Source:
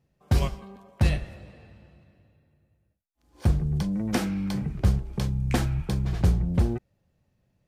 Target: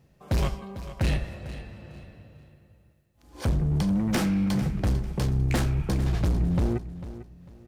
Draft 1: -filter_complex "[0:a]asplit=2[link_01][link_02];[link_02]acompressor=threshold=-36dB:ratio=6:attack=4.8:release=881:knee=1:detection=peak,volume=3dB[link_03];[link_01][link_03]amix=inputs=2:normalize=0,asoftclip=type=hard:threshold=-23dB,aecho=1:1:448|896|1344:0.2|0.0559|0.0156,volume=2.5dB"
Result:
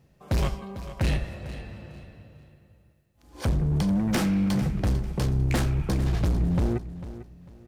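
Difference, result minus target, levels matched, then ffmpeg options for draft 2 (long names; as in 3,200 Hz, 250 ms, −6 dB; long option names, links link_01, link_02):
downward compressor: peak gain reduction −6 dB
-filter_complex "[0:a]asplit=2[link_01][link_02];[link_02]acompressor=threshold=-43dB:ratio=6:attack=4.8:release=881:knee=1:detection=peak,volume=3dB[link_03];[link_01][link_03]amix=inputs=2:normalize=0,asoftclip=type=hard:threshold=-23dB,aecho=1:1:448|896|1344:0.2|0.0559|0.0156,volume=2.5dB"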